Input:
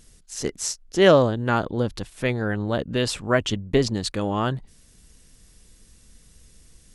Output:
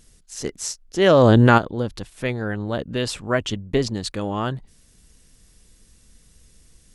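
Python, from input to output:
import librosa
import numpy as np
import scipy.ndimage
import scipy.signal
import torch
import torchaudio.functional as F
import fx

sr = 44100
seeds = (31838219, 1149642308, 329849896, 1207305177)

y = fx.env_flatten(x, sr, amount_pct=100, at=(1.09, 1.57), fade=0.02)
y = F.gain(torch.from_numpy(y), -1.0).numpy()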